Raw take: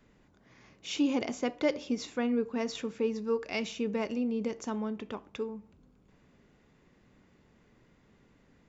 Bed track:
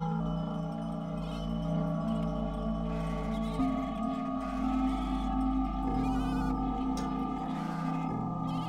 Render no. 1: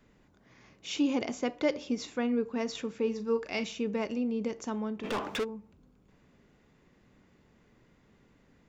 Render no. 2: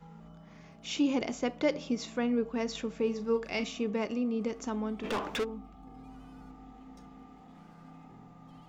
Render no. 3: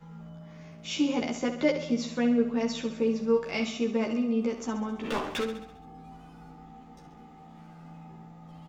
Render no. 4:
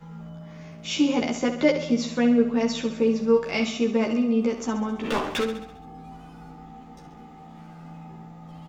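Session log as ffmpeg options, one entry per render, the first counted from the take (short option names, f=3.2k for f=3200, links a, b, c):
-filter_complex "[0:a]asettb=1/sr,asplit=3[a][b][c];[a]atrim=end=3.034[d];[b]atrim=start=3.03:end=3.64,asetpts=PTS-STARTPTS,afade=t=in:d=0.004:c=qsin,afade=t=out:st=0.606:d=0.004:c=qsin,asplit=2[e][f];[f]adelay=39,volume=-11dB[g];[e][g]amix=inputs=2:normalize=0,atrim=end_sample=26901[h];[c]atrim=start=3.636[i];[d][h]acrossfade=d=0.004:c1=hsin:c2=qsin[j];[j][i]acrossfade=d=0.004:c1=qsin:c2=hsin,asplit=3[k][l][m];[k]afade=t=out:st=5.03:d=0.02[n];[l]asplit=2[o][p];[p]highpass=f=720:p=1,volume=33dB,asoftclip=type=tanh:threshold=-24.5dB[q];[o][q]amix=inputs=2:normalize=0,lowpass=f=4.7k:p=1,volume=-6dB,afade=t=in:st=5.03:d=0.02,afade=t=out:st=5.43:d=0.02[r];[m]afade=t=in:st=5.43:d=0.02[s];[n][r][s]amix=inputs=3:normalize=0"
-filter_complex "[1:a]volume=-19dB[a];[0:a][a]amix=inputs=2:normalize=0"
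-filter_complex "[0:a]asplit=2[a][b];[b]adelay=13,volume=-2dB[c];[a][c]amix=inputs=2:normalize=0,aecho=1:1:67|134|201|268|335|402|469:0.316|0.18|0.103|0.0586|0.0334|0.019|0.0108"
-af "volume=5dB"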